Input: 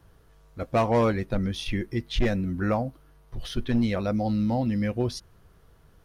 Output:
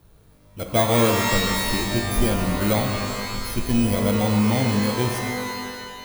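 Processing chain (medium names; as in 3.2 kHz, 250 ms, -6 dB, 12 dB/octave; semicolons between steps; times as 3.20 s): bit-reversed sample order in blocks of 16 samples; pitch-shifted reverb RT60 1.9 s, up +12 st, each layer -2 dB, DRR 3.5 dB; trim +2 dB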